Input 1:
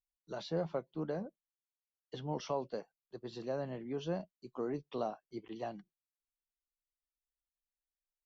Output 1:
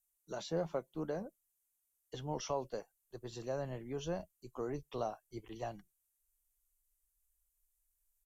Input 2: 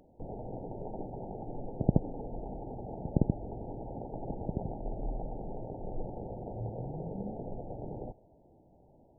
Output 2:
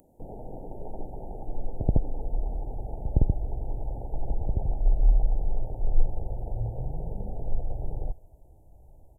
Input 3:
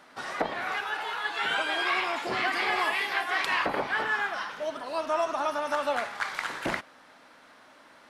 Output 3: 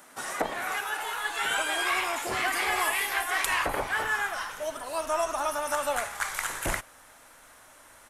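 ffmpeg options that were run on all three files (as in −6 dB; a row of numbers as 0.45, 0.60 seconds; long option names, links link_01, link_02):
-af "aresample=32000,aresample=44100,aexciter=amount=5.3:drive=7:freq=6500,asubboost=boost=11.5:cutoff=64"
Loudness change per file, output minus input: −1.0, +6.0, 0.0 LU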